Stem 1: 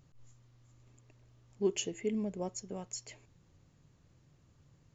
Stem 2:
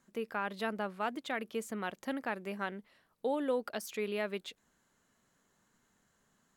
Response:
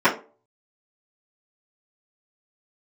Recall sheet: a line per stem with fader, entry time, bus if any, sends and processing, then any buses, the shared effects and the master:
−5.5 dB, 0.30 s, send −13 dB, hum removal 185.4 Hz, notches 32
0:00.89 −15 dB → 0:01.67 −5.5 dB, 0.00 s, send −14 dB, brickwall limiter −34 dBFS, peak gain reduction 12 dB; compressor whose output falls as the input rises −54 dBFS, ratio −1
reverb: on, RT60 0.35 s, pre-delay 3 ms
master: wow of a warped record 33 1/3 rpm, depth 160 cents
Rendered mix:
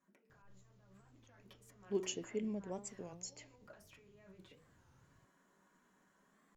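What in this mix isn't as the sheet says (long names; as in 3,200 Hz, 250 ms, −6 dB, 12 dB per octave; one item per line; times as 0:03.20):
stem 1: send off
stem 2 −15.0 dB → −25.5 dB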